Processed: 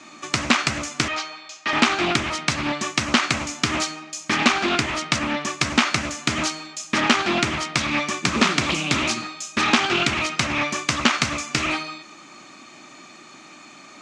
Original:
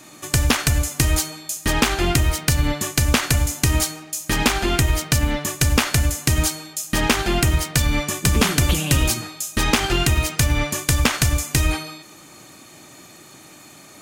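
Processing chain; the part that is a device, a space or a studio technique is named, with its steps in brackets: 1.08–1.73 three-band isolator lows -15 dB, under 460 Hz, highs -22 dB, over 5200 Hz; full-range speaker at full volume (Doppler distortion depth 0.6 ms; speaker cabinet 220–6600 Hz, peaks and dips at 230 Hz +5 dB, 470 Hz -6 dB, 1200 Hz +6 dB, 2400 Hz +5 dB)

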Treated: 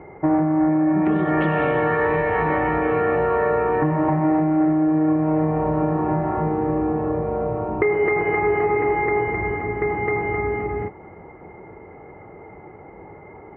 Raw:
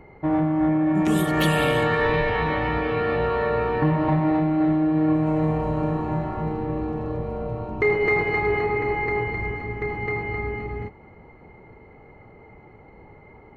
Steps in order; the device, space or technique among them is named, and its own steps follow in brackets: bass amplifier (compressor, threshold -23 dBFS, peak gain reduction 7 dB; speaker cabinet 63–2100 Hz, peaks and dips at 67 Hz -6 dB, 120 Hz -6 dB, 230 Hz -5 dB, 350 Hz +4 dB, 720 Hz +3 dB); gain +6.5 dB

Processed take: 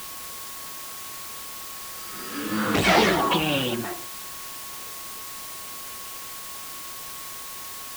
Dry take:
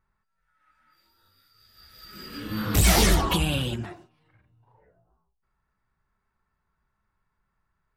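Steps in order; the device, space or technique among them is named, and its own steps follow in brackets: shortwave radio (BPF 260–3000 Hz; tremolo 0.78 Hz, depth 32%; whine 1100 Hz -52 dBFS; white noise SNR 8 dB); gain +8 dB

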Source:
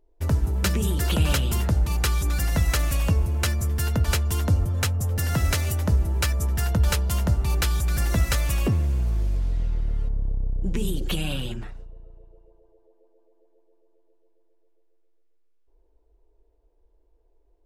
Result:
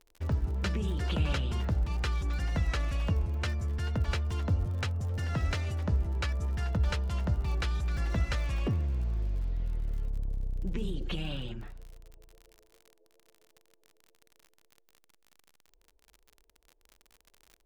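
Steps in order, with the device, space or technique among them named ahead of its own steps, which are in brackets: lo-fi chain (LPF 4100 Hz 12 dB/oct; wow and flutter 29 cents; crackle 53/s -34 dBFS); gain -7.5 dB

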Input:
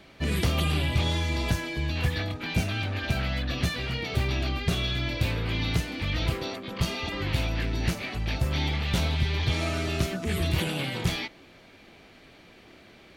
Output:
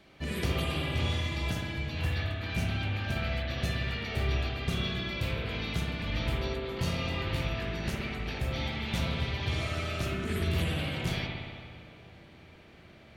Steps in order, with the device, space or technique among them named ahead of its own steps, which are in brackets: 6.62–7.23 flutter echo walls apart 4 m, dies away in 0.29 s; dub delay into a spring reverb (darkening echo 0.363 s, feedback 82%, low-pass 2000 Hz, level -22 dB; spring tank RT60 1.8 s, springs 59 ms, chirp 70 ms, DRR -1.5 dB); gain -7 dB

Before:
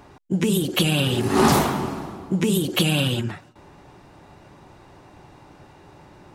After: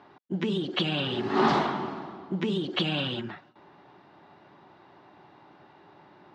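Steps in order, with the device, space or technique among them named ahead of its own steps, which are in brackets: kitchen radio (speaker cabinet 220–4000 Hz, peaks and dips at 270 Hz -3 dB, 500 Hz -6 dB, 2500 Hz -5 dB); gain -3.5 dB

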